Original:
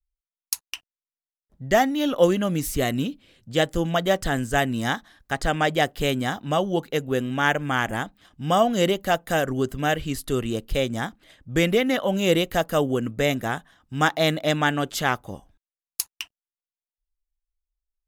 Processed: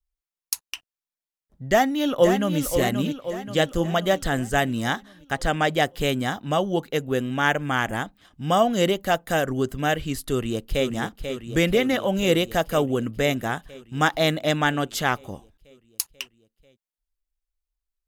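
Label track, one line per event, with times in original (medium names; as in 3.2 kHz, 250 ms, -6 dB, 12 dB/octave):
1.650000	2.590000	echo throw 530 ms, feedback 55%, level -7.5 dB
10.310000	10.880000	echo throw 490 ms, feedback 75%, level -8 dB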